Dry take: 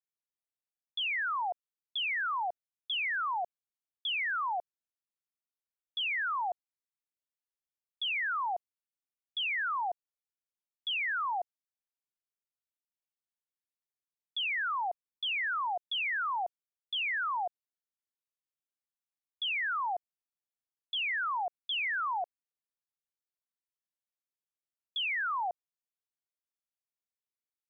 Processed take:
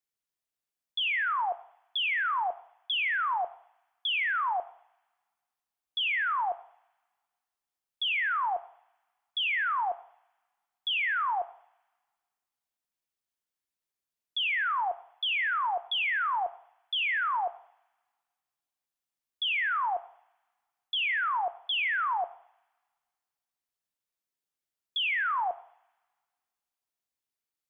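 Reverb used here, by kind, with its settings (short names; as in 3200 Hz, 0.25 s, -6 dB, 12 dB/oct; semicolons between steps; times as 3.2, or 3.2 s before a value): two-slope reverb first 0.6 s, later 1.9 s, from -27 dB, DRR 12 dB; gain +3.5 dB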